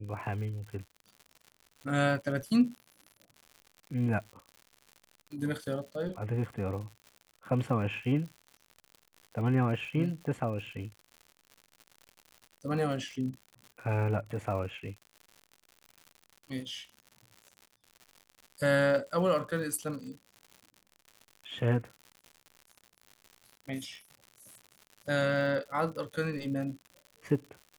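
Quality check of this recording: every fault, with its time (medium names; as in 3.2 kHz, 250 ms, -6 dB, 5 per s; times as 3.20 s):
crackle 120 per s -41 dBFS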